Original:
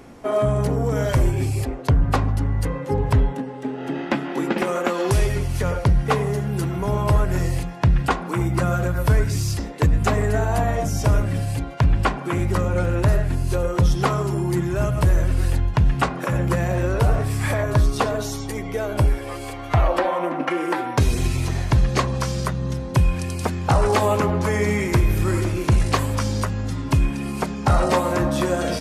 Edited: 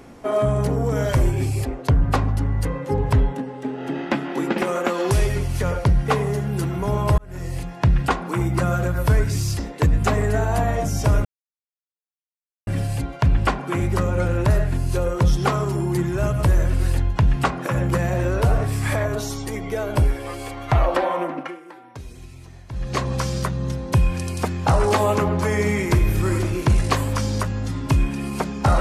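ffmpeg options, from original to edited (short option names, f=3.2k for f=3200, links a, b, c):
-filter_complex "[0:a]asplit=6[a][b][c][d][e][f];[a]atrim=end=7.18,asetpts=PTS-STARTPTS,afade=t=out:st=7.176:d=0.004:c=hsin[g];[b]atrim=start=7.18:end=11.25,asetpts=PTS-STARTPTS,afade=t=in:d=0.63,afade=t=out:st=4.066:d=0.004:c=hsin,apad=pad_dur=1.42[h];[c]atrim=start=11.25:end=17.732,asetpts=PTS-STARTPTS,afade=t=in:d=0.004:c=hsin[i];[d]atrim=start=18.168:end=20.62,asetpts=PTS-STARTPTS,afade=t=out:st=2.032:d=0.42:silence=0.112202[j];[e]atrim=start=20.62:end=21.72,asetpts=PTS-STARTPTS,volume=-19dB[k];[f]atrim=start=21.72,asetpts=PTS-STARTPTS,afade=t=in:d=0.42:silence=0.112202[l];[g][h][i]concat=n=3:v=0:a=1[m];[j][k][l]concat=n=3:v=0:a=1[n];[m][n]acrossfade=d=0.004:c1=hsin:c2=hsin"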